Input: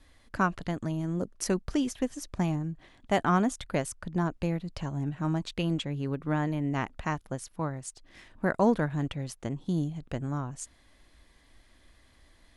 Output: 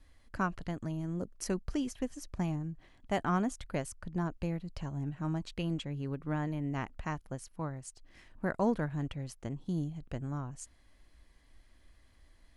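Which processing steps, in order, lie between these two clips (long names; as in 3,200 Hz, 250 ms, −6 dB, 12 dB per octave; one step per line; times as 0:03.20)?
low-shelf EQ 90 Hz +7.5 dB
notch filter 3,600 Hz, Q 14
level −6.5 dB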